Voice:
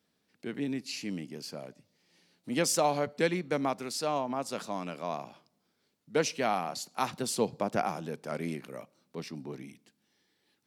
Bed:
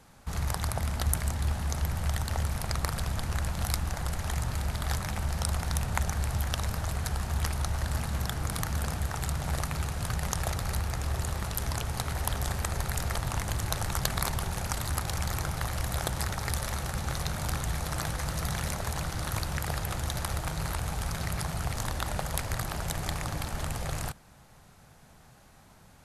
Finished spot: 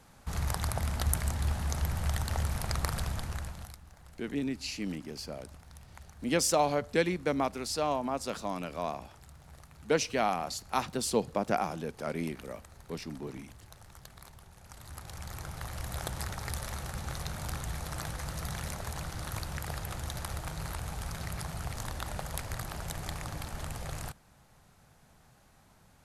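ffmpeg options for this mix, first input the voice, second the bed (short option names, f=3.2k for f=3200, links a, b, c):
-filter_complex "[0:a]adelay=3750,volume=0.5dB[a];[1:a]volume=15dB,afade=t=out:st=2.98:d=0.78:silence=0.0944061,afade=t=in:st=14.6:d=1.48:silence=0.149624[b];[a][b]amix=inputs=2:normalize=0"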